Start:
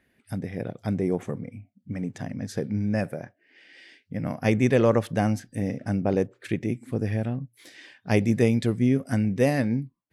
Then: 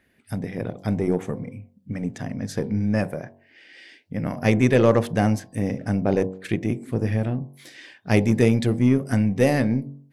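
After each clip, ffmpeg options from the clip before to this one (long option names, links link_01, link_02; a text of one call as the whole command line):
ffmpeg -i in.wav -af "aeval=exprs='0.398*(cos(1*acos(clip(val(0)/0.398,-1,1)))-cos(1*PI/2))+0.01*(cos(8*acos(clip(val(0)/0.398,-1,1)))-cos(8*PI/2))':channel_layout=same,bandreject=frequency=46.94:width_type=h:width=4,bandreject=frequency=93.88:width_type=h:width=4,bandreject=frequency=140.82:width_type=h:width=4,bandreject=frequency=187.76:width_type=h:width=4,bandreject=frequency=234.7:width_type=h:width=4,bandreject=frequency=281.64:width_type=h:width=4,bandreject=frequency=328.58:width_type=h:width=4,bandreject=frequency=375.52:width_type=h:width=4,bandreject=frequency=422.46:width_type=h:width=4,bandreject=frequency=469.4:width_type=h:width=4,bandreject=frequency=516.34:width_type=h:width=4,bandreject=frequency=563.28:width_type=h:width=4,bandreject=frequency=610.22:width_type=h:width=4,bandreject=frequency=657.16:width_type=h:width=4,bandreject=frequency=704.1:width_type=h:width=4,bandreject=frequency=751.04:width_type=h:width=4,bandreject=frequency=797.98:width_type=h:width=4,bandreject=frequency=844.92:width_type=h:width=4,bandreject=frequency=891.86:width_type=h:width=4,bandreject=frequency=938.8:width_type=h:width=4,bandreject=frequency=985.74:width_type=h:width=4,bandreject=frequency=1032.68:width_type=h:width=4,bandreject=frequency=1079.62:width_type=h:width=4,volume=3.5dB" out.wav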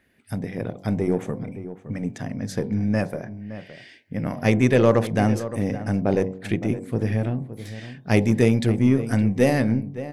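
ffmpeg -i in.wav -filter_complex "[0:a]asplit=2[link_01][link_02];[link_02]adelay=565.6,volume=-13dB,highshelf=frequency=4000:gain=-12.7[link_03];[link_01][link_03]amix=inputs=2:normalize=0" out.wav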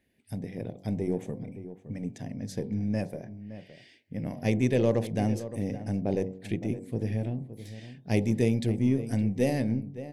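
ffmpeg -i in.wav -af "equalizer=frequency=1300:width_type=o:width=0.78:gain=-14.5,volume=-6.5dB" out.wav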